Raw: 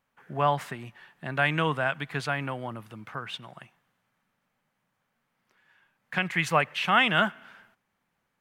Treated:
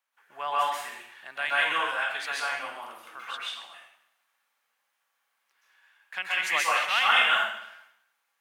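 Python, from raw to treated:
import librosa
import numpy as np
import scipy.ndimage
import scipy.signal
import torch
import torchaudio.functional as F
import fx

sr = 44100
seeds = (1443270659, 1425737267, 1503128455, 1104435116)

y = scipy.signal.sosfilt(scipy.signal.butter(2, 740.0, 'highpass', fs=sr, output='sos'), x)
y = fx.high_shelf(y, sr, hz=2400.0, db=7.5)
y = fx.rev_plate(y, sr, seeds[0], rt60_s=0.72, hf_ratio=0.95, predelay_ms=115, drr_db=-7.0)
y = F.gain(torch.from_numpy(y), -8.0).numpy()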